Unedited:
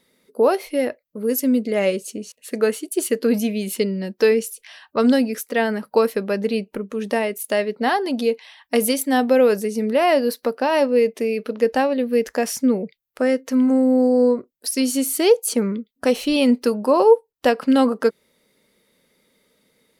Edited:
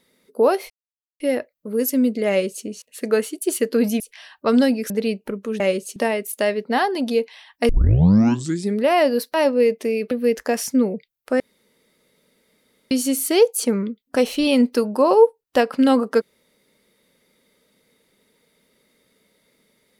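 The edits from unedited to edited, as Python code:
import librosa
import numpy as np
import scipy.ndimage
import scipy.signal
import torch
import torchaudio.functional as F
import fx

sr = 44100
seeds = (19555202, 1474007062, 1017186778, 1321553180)

y = fx.edit(x, sr, fx.insert_silence(at_s=0.7, length_s=0.5),
    fx.duplicate(start_s=1.79, length_s=0.36, to_s=7.07),
    fx.cut(start_s=3.5, length_s=1.01),
    fx.cut(start_s=5.41, length_s=0.96),
    fx.tape_start(start_s=8.8, length_s=1.09),
    fx.cut(start_s=10.45, length_s=0.25),
    fx.cut(start_s=11.47, length_s=0.53),
    fx.room_tone_fill(start_s=13.29, length_s=1.51), tone=tone)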